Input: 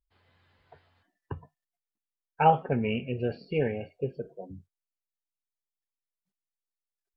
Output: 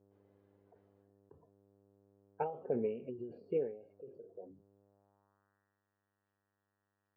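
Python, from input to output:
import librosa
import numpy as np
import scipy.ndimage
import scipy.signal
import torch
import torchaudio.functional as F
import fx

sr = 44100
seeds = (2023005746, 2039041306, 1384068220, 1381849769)

y = fx.spec_box(x, sr, start_s=3.09, length_s=0.24, low_hz=400.0, high_hz=2800.0, gain_db=-18)
y = fx.dmg_buzz(y, sr, base_hz=100.0, harmonics=19, level_db=-57.0, tilt_db=-9, odd_only=False)
y = fx.filter_sweep_bandpass(y, sr, from_hz=430.0, to_hz=2700.0, start_s=4.75, end_s=5.83, q=2.2)
y = fx.end_taper(y, sr, db_per_s=110.0)
y = F.gain(torch.from_numpy(y), 1.0).numpy()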